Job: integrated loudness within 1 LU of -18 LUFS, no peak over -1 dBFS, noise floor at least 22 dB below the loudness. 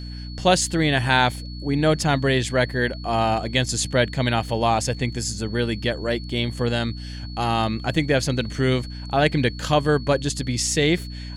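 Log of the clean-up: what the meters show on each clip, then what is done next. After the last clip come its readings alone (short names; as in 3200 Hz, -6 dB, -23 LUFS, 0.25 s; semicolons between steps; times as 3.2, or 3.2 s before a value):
hum 60 Hz; harmonics up to 300 Hz; hum level -31 dBFS; steady tone 4400 Hz; tone level -41 dBFS; loudness -22.0 LUFS; peak -3.5 dBFS; loudness target -18.0 LUFS
-> notches 60/120/180/240/300 Hz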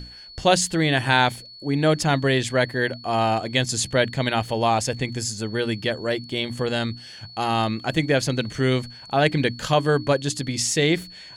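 hum none; steady tone 4400 Hz; tone level -41 dBFS
-> notch 4400 Hz, Q 30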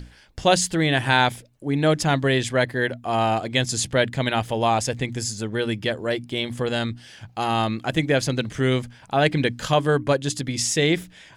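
steady tone none; loudness -22.5 LUFS; peak -3.5 dBFS; loudness target -18.0 LUFS
-> gain +4.5 dB; limiter -1 dBFS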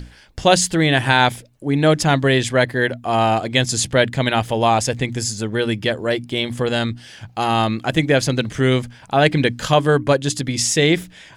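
loudness -18.0 LUFS; peak -1.0 dBFS; noise floor -46 dBFS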